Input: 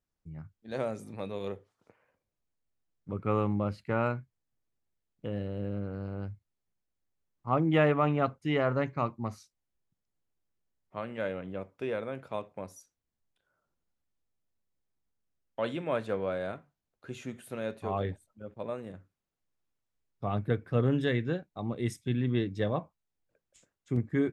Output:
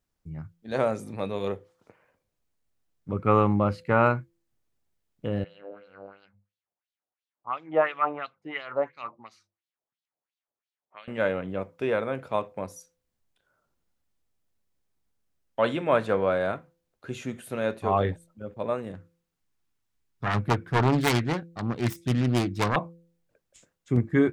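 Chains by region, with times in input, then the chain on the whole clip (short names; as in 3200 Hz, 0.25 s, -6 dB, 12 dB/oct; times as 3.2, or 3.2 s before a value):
5.44–11.08 notches 50/100/150/200 Hz + LFO band-pass sine 2.9 Hz 610–3900 Hz
18.94–22.76 self-modulated delay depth 0.87 ms + bell 560 Hz -7 dB 0.73 oct
whole clip: de-hum 169.3 Hz, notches 3; dynamic EQ 1100 Hz, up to +5 dB, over -41 dBFS, Q 0.8; gain +6 dB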